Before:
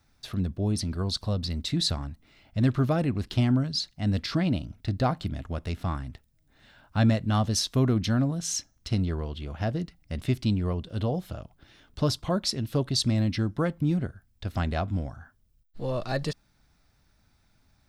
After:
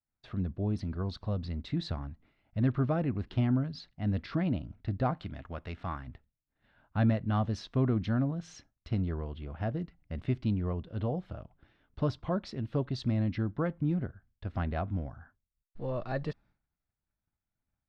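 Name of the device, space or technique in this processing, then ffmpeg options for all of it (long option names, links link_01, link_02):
hearing-loss simulation: -filter_complex "[0:a]asettb=1/sr,asplit=3[link_01][link_02][link_03];[link_01]atrim=end=5.174[link_04];[link_02]atrim=start=5.17:end=6.07,asetpts=PTS-STARTPTS,afade=type=in:duration=0.004:curve=qsin,afade=type=out:start_time=0.896:duration=0.004:curve=qsin,tiltshelf=frequency=640:gain=-5[link_05];[link_03]atrim=start=6.066[link_06];[link_04][link_05]acrossfade=duration=0.004:curve1=hsin:curve2=qsin[link_07];[link_07][link_06]acrossfade=duration=0.004:curve1=qsin:curve2=hsin,lowpass=2200,agate=range=-33dB:threshold=-52dB:ratio=3:detection=peak,volume=-4.5dB"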